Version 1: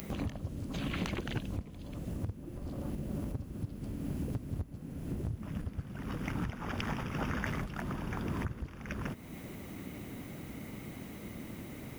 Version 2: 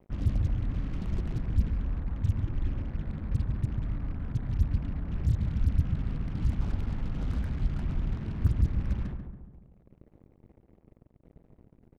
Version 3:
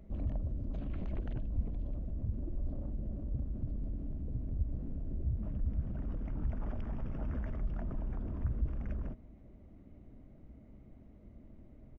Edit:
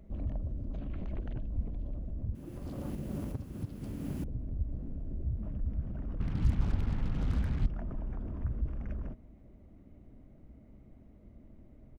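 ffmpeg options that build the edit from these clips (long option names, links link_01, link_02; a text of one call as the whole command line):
ffmpeg -i take0.wav -i take1.wav -i take2.wav -filter_complex "[2:a]asplit=3[link_01][link_02][link_03];[link_01]atrim=end=2.352[link_04];[0:a]atrim=start=2.348:end=4.242[link_05];[link_02]atrim=start=4.238:end=6.202[link_06];[1:a]atrim=start=6.198:end=7.662[link_07];[link_03]atrim=start=7.658[link_08];[link_04][link_05]acrossfade=duration=0.004:curve1=hsin:curve2=hsin[link_09];[link_09][link_06]acrossfade=duration=0.004:curve1=hsin:curve2=hsin[link_10];[link_10][link_07]acrossfade=duration=0.004:curve1=hsin:curve2=hsin[link_11];[link_11][link_08]acrossfade=duration=0.004:curve1=hsin:curve2=hsin" out.wav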